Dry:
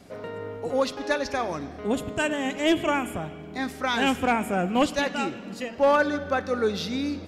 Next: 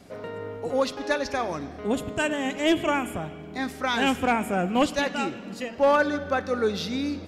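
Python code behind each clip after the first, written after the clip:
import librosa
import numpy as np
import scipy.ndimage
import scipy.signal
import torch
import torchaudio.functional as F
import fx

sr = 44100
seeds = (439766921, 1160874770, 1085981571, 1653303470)

y = x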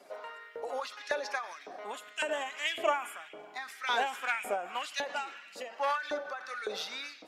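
y = fx.spec_quant(x, sr, step_db=15)
y = fx.filter_lfo_highpass(y, sr, shape='saw_up', hz=1.8, low_hz=490.0, high_hz=2400.0, q=1.8)
y = fx.end_taper(y, sr, db_per_s=110.0)
y = F.gain(torch.from_numpy(y), -4.0).numpy()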